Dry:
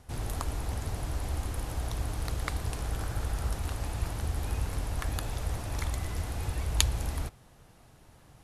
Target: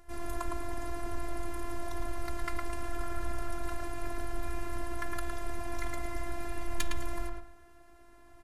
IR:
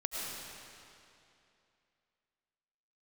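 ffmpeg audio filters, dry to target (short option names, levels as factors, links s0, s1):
-filter_complex "[0:a]highshelf=f=2500:t=q:w=1.5:g=-6,bandreject=f=104.9:t=h:w=4,bandreject=f=209.8:t=h:w=4,bandreject=f=314.7:t=h:w=4,bandreject=f=419.6:t=h:w=4,bandreject=f=524.5:t=h:w=4,bandreject=f=629.4:t=h:w=4,bandreject=f=734.3:t=h:w=4,bandreject=f=839.2:t=h:w=4,bandreject=f=944.1:t=h:w=4,bandreject=f=1049:t=h:w=4,bandreject=f=1153.9:t=h:w=4,bandreject=f=1258.8:t=h:w=4,bandreject=f=1363.7:t=h:w=4,bandreject=f=1468.6:t=h:w=4,bandreject=f=1573.5:t=h:w=4,bandreject=f=1678.4:t=h:w=4,bandreject=f=1783.3:t=h:w=4,bandreject=f=1888.2:t=h:w=4,bandreject=f=1993.1:t=h:w=4,bandreject=f=2098:t=h:w=4,bandreject=f=2202.9:t=h:w=4,bandreject=f=2307.8:t=h:w=4,bandreject=f=2412.7:t=h:w=4,bandreject=f=2517.6:t=h:w=4,bandreject=f=2622.5:t=h:w=4,bandreject=f=2727.4:t=h:w=4,bandreject=f=2832.3:t=h:w=4,bandreject=f=2937.2:t=h:w=4,bandreject=f=3042.1:t=h:w=4,bandreject=f=3147:t=h:w=4,bandreject=f=3251.9:t=h:w=4,bandreject=f=3356.8:t=h:w=4,bandreject=f=3461.7:t=h:w=4,bandreject=f=3566.6:t=h:w=4,bandreject=f=3671.5:t=h:w=4,bandreject=f=3776.4:t=h:w=4,bandreject=f=3881.3:t=h:w=4,bandreject=f=3986.2:t=h:w=4,asplit=2[s0][s1];[s1]adelay=110,lowpass=f=2500:p=1,volume=0.708,asplit=2[s2][s3];[s3]adelay=110,lowpass=f=2500:p=1,volume=0.28,asplit=2[s4][s5];[s5]adelay=110,lowpass=f=2500:p=1,volume=0.28,asplit=2[s6][s7];[s7]adelay=110,lowpass=f=2500:p=1,volume=0.28[s8];[s2][s4][s6][s8]amix=inputs=4:normalize=0[s9];[s0][s9]amix=inputs=2:normalize=0,asoftclip=type=tanh:threshold=0.106,afftfilt=real='hypot(re,im)*cos(PI*b)':imag='0':win_size=512:overlap=0.75,volume=1.5"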